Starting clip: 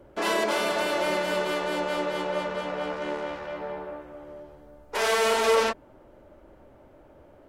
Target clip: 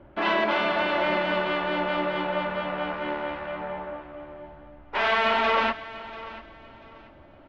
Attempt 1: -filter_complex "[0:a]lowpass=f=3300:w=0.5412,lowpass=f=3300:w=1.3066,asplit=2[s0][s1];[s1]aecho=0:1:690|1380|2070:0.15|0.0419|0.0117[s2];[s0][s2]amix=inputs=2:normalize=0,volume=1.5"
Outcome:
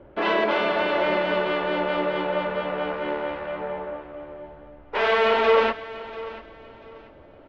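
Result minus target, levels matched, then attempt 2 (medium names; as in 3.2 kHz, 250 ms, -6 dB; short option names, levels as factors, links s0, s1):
500 Hz band +3.0 dB
-filter_complex "[0:a]lowpass=f=3300:w=0.5412,lowpass=f=3300:w=1.3066,equalizer=f=460:t=o:w=0.37:g=-13,asplit=2[s0][s1];[s1]aecho=0:1:690|1380|2070:0.15|0.0419|0.0117[s2];[s0][s2]amix=inputs=2:normalize=0,volume=1.5"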